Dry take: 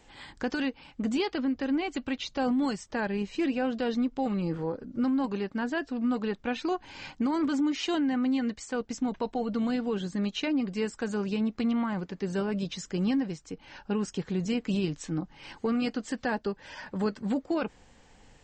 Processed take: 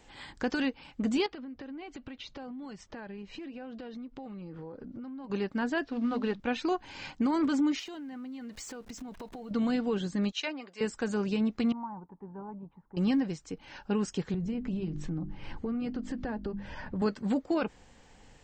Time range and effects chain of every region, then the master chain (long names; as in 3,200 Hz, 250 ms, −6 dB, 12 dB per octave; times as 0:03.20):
0:01.26–0:05.30: high-frequency loss of the air 120 metres + downward compressor 12 to 1, threshold −39 dBFS
0:05.84–0:06.40: variable-slope delta modulation 64 kbit/s + low-pass filter 4,700 Hz 24 dB per octave + mains-hum notches 50/100/150/200/250/300 Hz
0:07.79–0:09.51: converter with a step at zero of −46.5 dBFS + downward compressor 10 to 1, threshold −39 dBFS
0:10.32–0:10.81: high-pass filter 630 Hz + multiband upward and downward expander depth 70%
0:11.72–0:12.97: transistor ladder low-pass 950 Hz, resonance 80% + parametric band 570 Hz −8.5 dB 1 octave
0:14.34–0:17.02: RIAA equalisation playback + mains-hum notches 50/100/150/200/250/300/350 Hz + downward compressor 4 to 1, threshold −32 dBFS
whole clip: no processing